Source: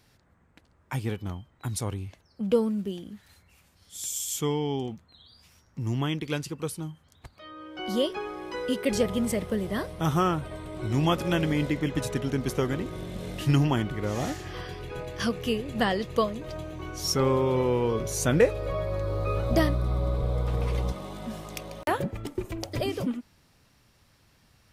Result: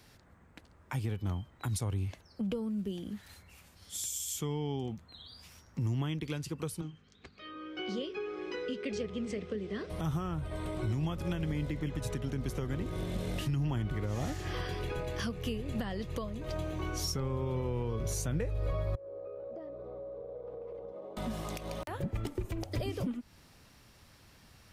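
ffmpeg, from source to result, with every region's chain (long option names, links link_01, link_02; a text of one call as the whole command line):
ffmpeg -i in.wav -filter_complex "[0:a]asettb=1/sr,asplit=3[link_01][link_02][link_03];[link_01]atrim=end=6.814[link_04];[link_02]atrim=start=6.81:end=9.9,asetpts=PTS-STARTPTS,afade=type=in:duration=0.004:curve=qsin,afade=type=out:start_time=3.086:duration=0.004:curve=qsin,flanger=delay=1.1:depth=6.2:regen=-83:speed=1.8:shape=triangular,aeval=exprs='val(0)+0.000891*(sin(2*PI*50*n/s)+sin(2*PI*2*50*n/s)/2+sin(2*PI*3*50*n/s)/3+sin(2*PI*4*50*n/s)/4+sin(2*PI*5*50*n/s)/5)':channel_layout=same,highpass=110,equalizer=frequency=120:width_type=q:width=4:gain=-9,equalizer=frequency=420:width_type=q:width=4:gain=8,equalizer=frequency=610:width_type=q:width=4:gain=-8,equalizer=frequency=910:width_type=q:width=4:gain=-10,equalizer=frequency=2500:width_type=q:width=4:gain=5,lowpass=frequency=6400:width=0.5412,lowpass=frequency=6400:width=1.3066[link_05];[link_03]atrim=start=9.896[link_06];[link_04][link_05]acrossfade=duration=0.004:curve1=hsin:curve2=qsin[link_07];[link_07][link_06]acrossfade=duration=0.004:curve1=qsin:curve2=hsin,asettb=1/sr,asplit=3[link_08][link_09][link_10];[link_08]atrim=end=18.954[link_11];[link_09]atrim=start=18.95:end=21.17,asetpts=PTS-STARTPTS,afade=type=in:duration=0.004:curve=qsin,afade=type=out:start_time=2.216:duration=0.004:curve=qsin,bandpass=frequency=500:width_type=q:width=4.6,acompressor=threshold=-43dB:ratio=10:attack=3.2:release=140:knee=1:detection=peak[link_12];[link_10]atrim=start=21.166[link_13];[link_11][link_12]acrossfade=duration=0.004:curve1=hsin:curve2=qsin[link_14];[link_14][link_13]acrossfade=duration=0.004:curve1=qsin:curve2=hsin,equalizer=frequency=130:width_type=o:width=0.36:gain=-2.5,acrossover=split=130[link_15][link_16];[link_16]acompressor=threshold=-39dB:ratio=5[link_17];[link_15][link_17]amix=inputs=2:normalize=0,alimiter=level_in=4dB:limit=-24dB:level=0:latency=1:release=95,volume=-4dB,volume=3.5dB" out.wav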